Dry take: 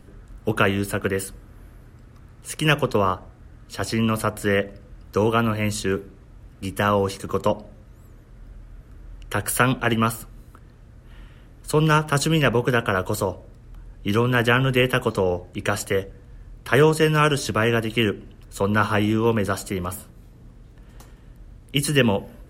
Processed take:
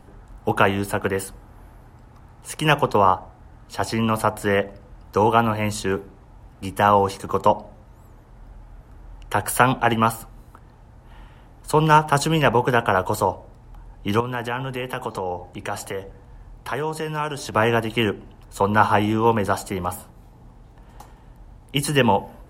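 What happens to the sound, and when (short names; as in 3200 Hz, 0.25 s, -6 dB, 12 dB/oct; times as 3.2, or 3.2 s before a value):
14.2–17.53 compressor 2.5:1, threshold -29 dBFS
whole clip: bell 840 Hz +14 dB 0.6 oct; gain -1 dB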